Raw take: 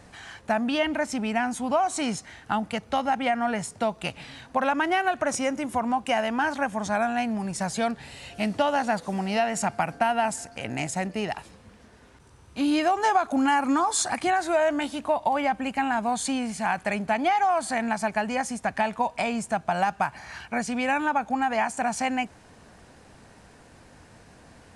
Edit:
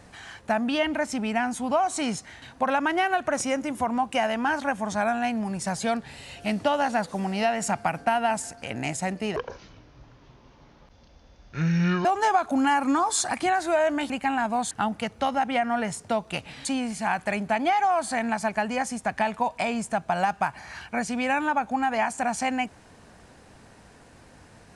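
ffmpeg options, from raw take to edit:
-filter_complex "[0:a]asplit=7[s0][s1][s2][s3][s4][s5][s6];[s0]atrim=end=2.422[s7];[s1]atrim=start=4.358:end=11.304[s8];[s2]atrim=start=11.3:end=12.86,asetpts=PTS-STARTPTS,asetrate=25578,aresample=44100[s9];[s3]atrim=start=12.856:end=14.912[s10];[s4]atrim=start=15.628:end=16.242[s11];[s5]atrim=start=2.418:end=4.362[s12];[s6]atrim=start=16.238[s13];[s7][s8]acrossfade=d=0.004:c1=hsin:c2=hsin[s14];[s14][s9]acrossfade=d=0.004:c1=hsin:c2=hsin[s15];[s15][s10]acrossfade=d=0.004:c1=hsin:c2=hsin[s16];[s16][s11]acrossfade=d=0.004:c1=hsin:c2=hsin[s17];[s17][s12]acrossfade=d=0.004:c1=hsin:c2=hsin[s18];[s18][s13]acrossfade=d=0.004:c1=hsin:c2=hsin"

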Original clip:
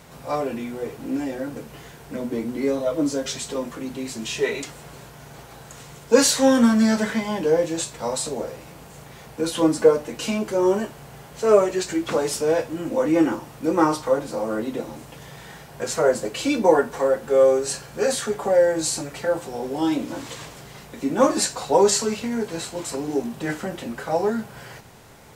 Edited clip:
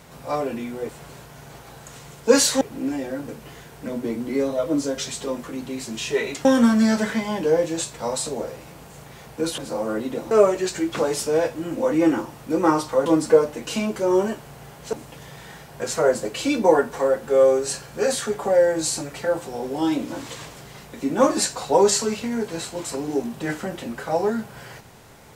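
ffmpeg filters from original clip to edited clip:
-filter_complex "[0:a]asplit=8[s0][s1][s2][s3][s4][s5][s6][s7];[s0]atrim=end=0.892[s8];[s1]atrim=start=4.728:end=6.452[s9];[s2]atrim=start=0.888:end=4.732[s10];[s3]atrim=start=6.448:end=9.582[s11];[s4]atrim=start=14.198:end=14.932[s12];[s5]atrim=start=11.448:end=14.202[s13];[s6]atrim=start=9.578:end=11.452[s14];[s7]atrim=start=14.928[s15];[s8][s9]acrossfade=d=0.004:c1=hsin:c2=hsin[s16];[s16][s10]acrossfade=d=0.004:c1=hsin:c2=hsin[s17];[s17][s11]acrossfade=d=0.004:c1=hsin:c2=hsin[s18];[s18][s12]acrossfade=d=0.004:c1=hsin:c2=hsin[s19];[s19][s13]acrossfade=d=0.004:c1=hsin:c2=hsin[s20];[s20][s14]acrossfade=d=0.004:c1=hsin:c2=hsin[s21];[s21][s15]acrossfade=d=0.004:c1=hsin:c2=hsin"

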